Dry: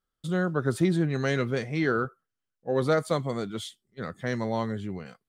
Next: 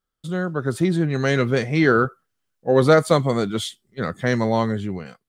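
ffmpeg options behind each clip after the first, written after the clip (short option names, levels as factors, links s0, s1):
-af "dynaudnorm=f=520:g=5:m=2.82,volume=1.19"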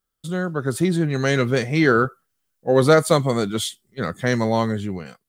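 -af "highshelf=f=7000:g=9.5"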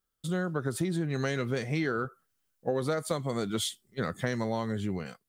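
-af "acompressor=threshold=0.0708:ratio=12,volume=0.708"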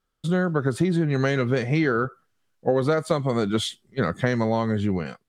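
-af "aemphasis=mode=reproduction:type=50fm,volume=2.51"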